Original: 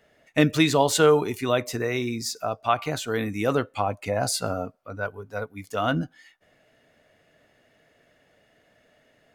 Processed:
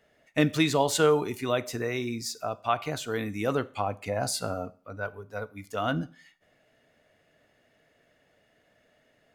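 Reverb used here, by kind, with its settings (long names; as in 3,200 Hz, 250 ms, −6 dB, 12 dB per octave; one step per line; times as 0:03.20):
four-comb reverb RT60 0.45 s, combs from 30 ms, DRR 18.5 dB
level −4 dB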